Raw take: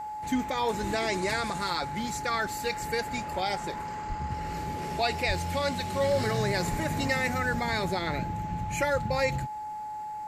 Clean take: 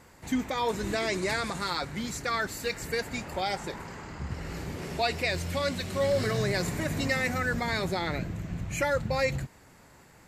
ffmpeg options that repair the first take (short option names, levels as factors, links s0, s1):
-filter_complex "[0:a]bandreject=f=850:w=30,asplit=3[s0][s1][s2];[s0]afade=t=out:st=4.08:d=0.02[s3];[s1]highpass=f=140:w=0.5412,highpass=f=140:w=1.3066,afade=t=in:st=4.08:d=0.02,afade=t=out:st=4.2:d=0.02[s4];[s2]afade=t=in:st=4.2:d=0.02[s5];[s3][s4][s5]amix=inputs=3:normalize=0,asplit=3[s6][s7][s8];[s6]afade=t=out:st=5.27:d=0.02[s9];[s7]highpass=f=140:w=0.5412,highpass=f=140:w=1.3066,afade=t=in:st=5.27:d=0.02,afade=t=out:st=5.39:d=0.02[s10];[s8]afade=t=in:st=5.39:d=0.02[s11];[s9][s10][s11]amix=inputs=3:normalize=0,asplit=3[s12][s13][s14];[s12]afade=t=out:st=6.7:d=0.02[s15];[s13]highpass=f=140:w=0.5412,highpass=f=140:w=1.3066,afade=t=in:st=6.7:d=0.02,afade=t=out:st=6.82:d=0.02[s16];[s14]afade=t=in:st=6.82:d=0.02[s17];[s15][s16][s17]amix=inputs=3:normalize=0"